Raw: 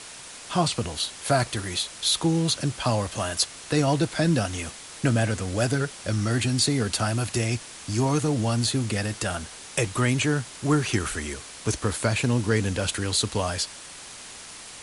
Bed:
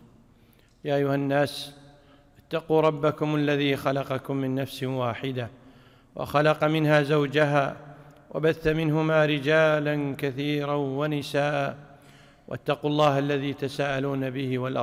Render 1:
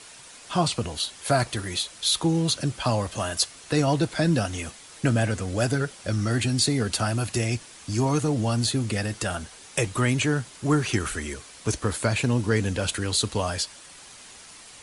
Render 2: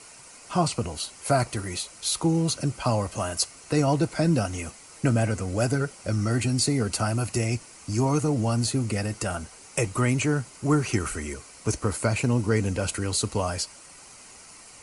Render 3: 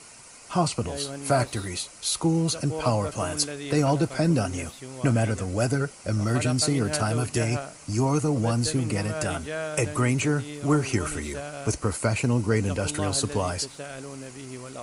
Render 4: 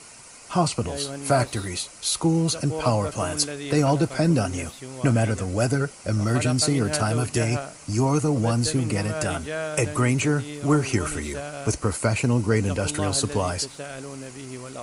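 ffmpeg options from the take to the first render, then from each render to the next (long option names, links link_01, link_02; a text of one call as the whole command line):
ffmpeg -i in.wav -af "afftdn=noise_reduction=6:noise_floor=-42" out.wav
ffmpeg -i in.wav -af "equalizer=frequency=3500:width_type=o:width=0.41:gain=-12.5,bandreject=frequency=1700:width=7" out.wav
ffmpeg -i in.wav -i bed.wav -filter_complex "[1:a]volume=-11.5dB[link_01];[0:a][link_01]amix=inputs=2:normalize=0" out.wav
ffmpeg -i in.wav -af "volume=2dB" out.wav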